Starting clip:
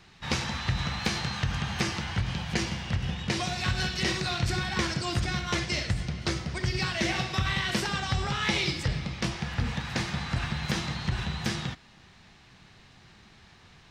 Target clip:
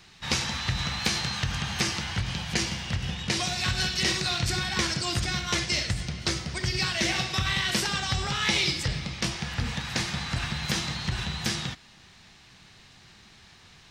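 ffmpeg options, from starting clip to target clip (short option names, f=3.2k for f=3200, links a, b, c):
-af "highshelf=f=2.9k:g=9,volume=-1dB"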